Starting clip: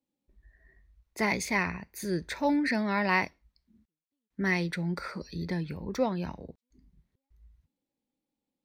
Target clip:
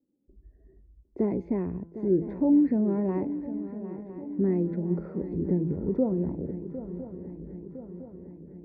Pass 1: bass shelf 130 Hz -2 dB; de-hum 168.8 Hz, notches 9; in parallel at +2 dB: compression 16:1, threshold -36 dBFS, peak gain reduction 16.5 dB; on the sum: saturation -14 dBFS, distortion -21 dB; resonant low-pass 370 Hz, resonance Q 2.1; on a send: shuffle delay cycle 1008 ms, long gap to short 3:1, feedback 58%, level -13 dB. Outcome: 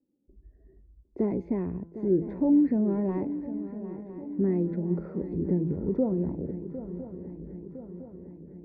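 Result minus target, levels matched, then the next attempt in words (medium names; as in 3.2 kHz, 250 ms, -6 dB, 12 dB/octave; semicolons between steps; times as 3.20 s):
saturation: distortion +14 dB
bass shelf 130 Hz -2 dB; de-hum 168.8 Hz, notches 9; in parallel at +2 dB: compression 16:1, threshold -36 dBFS, peak gain reduction 16.5 dB; on the sum: saturation -5.5 dBFS, distortion -36 dB; resonant low-pass 370 Hz, resonance Q 2.1; on a send: shuffle delay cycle 1008 ms, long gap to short 3:1, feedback 58%, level -13 dB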